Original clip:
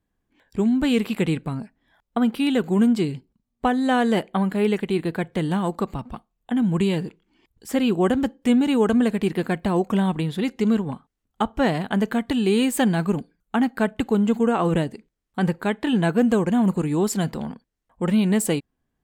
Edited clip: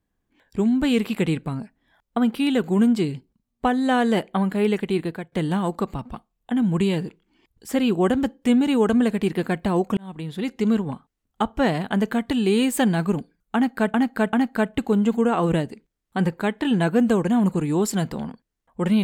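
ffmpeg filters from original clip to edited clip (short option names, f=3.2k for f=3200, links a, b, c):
-filter_complex "[0:a]asplit=5[a][b][c][d][e];[a]atrim=end=5.32,asetpts=PTS-STARTPTS,afade=t=out:st=5:d=0.32:silence=0.125893[f];[b]atrim=start=5.32:end=9.97,asetpts=PTS-STARTPTS,afade=t=in:d=0.004:c=hsin:silence=0.125893,afade=t=out:st=4.646:d=0.004:c=hsin[g];[c]atrim=start=9.97:end=13.942,asetpts=PTS-STARTPTS,afade=t=in:d=0.88:c=qsin[h];[d]atrim=start=13.548:end=13.942[i];[e]atrim=start=13.548[j];[f][g][h]concat=n=3:v=0:a=1[k];[k][i]acrossfade=d=0.004:c1=hsin:c2=hsin[l];[l][j]acrossfade=d=0.004:c1=hsin:c2=hsin"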